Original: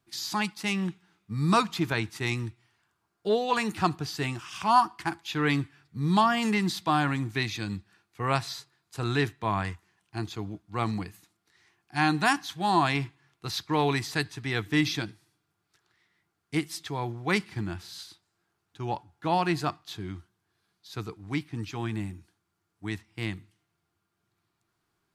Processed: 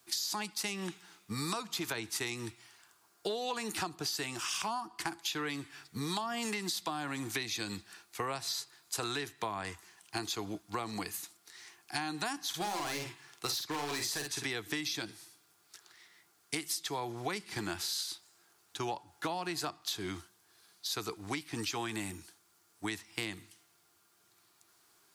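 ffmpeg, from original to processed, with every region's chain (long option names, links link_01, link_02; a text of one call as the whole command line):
ffmpeg -i in.wav -filter_complex "[0:a]asettb=1/sr,asplit=3[link_01][link_02][link_03];[link_01]atrim=end=12.494[link_04];[link_02]atrim=start=12.49:end=14.45,asetpts=PTS-STARTPTS,afade=type=in:duration=0.004:curve=qsin,afade=type=out:start_time=1.956:duration=0.004:curve=qsin,asoftclip=type=hard:threshold=-28.5dB,asplit=2[link_05][link_06];[link_06]adelay=48,volume=-5dB[link_07];[link_05][link_07]amix=inputs=2:normalize=0,atrim=end_sample=86436[link_08];[link_03]atrim=start=14.446[link_09];[link_04][link_08]acrossfade=duration=0.004:curve1=hsin:curve2=qsin[link_10];[link_10][link_09]acrossfade=duration=0.004:curve1=qsin:curve2=hsin,acrossover=split=260|620[link_11][link_12][link_13];[link_11]acompressor=threshold=-36dB:ratio=4[link_14];[link_12]acompressor=threshold=-38dB:ratio=4[link_15];[link_13]acompressor=threshold=-37dB:ratio=4[link_16];[link_14][link_15][link_16]amix=inputs=3:normalize=0,bass=frequency=250:gain=-13,treble=frequency=4000:gain=10,acompressor=threshold=-42dB:ratio=6,volume=8.5dB" out.wav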